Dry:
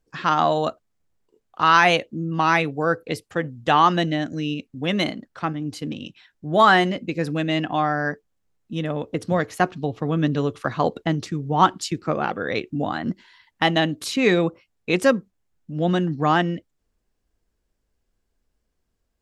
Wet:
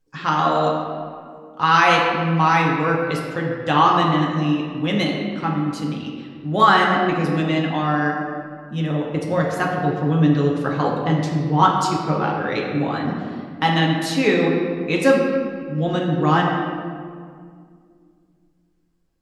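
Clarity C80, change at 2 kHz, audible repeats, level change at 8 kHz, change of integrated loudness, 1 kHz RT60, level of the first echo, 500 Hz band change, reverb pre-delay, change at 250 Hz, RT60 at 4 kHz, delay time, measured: 3.0 dB, +1.5 dB, no echo audible, +0.5 dB, +2.5 dB, 1.9 s, no echo audible, +2.0 dB, 6 ms, +4.0 dB, 1.2 s, no echo audible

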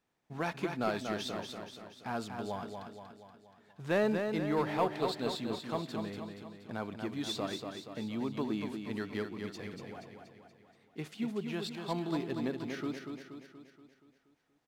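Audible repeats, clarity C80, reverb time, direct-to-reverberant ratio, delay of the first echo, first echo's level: 6, no reverb audible, no reverb audible, no reverb audible, 238 ms, −6.0 dB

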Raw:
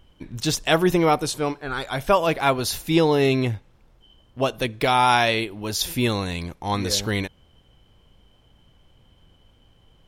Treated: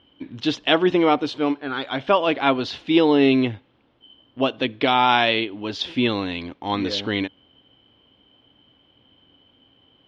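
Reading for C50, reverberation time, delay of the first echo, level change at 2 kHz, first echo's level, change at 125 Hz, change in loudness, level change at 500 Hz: no reverb audible, no reverb audible, no echo audible, +1.0 dB, no echo audible, −6.5 dB, +1.0 dB, +0.5 dB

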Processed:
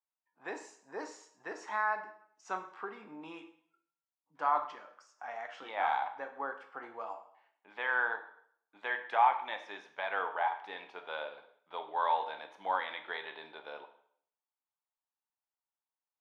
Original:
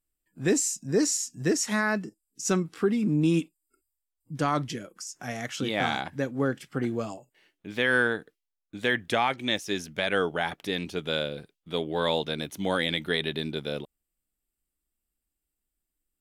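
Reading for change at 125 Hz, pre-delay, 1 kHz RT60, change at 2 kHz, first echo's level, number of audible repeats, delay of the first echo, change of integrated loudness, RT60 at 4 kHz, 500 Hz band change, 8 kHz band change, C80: below −35 dB, 6 ms, 0.60 s, −7.0 dB, no echo audible, no echo audible, no echo audible, −7.5 dB, 0.60 s, −13.0 dB, below −25 dB, 14.0 dB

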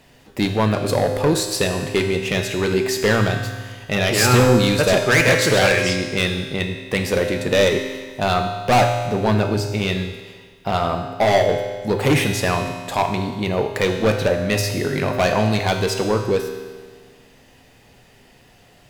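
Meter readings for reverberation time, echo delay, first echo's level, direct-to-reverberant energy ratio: 1.6 s, no echo audible, no echo audible, 4.0 dB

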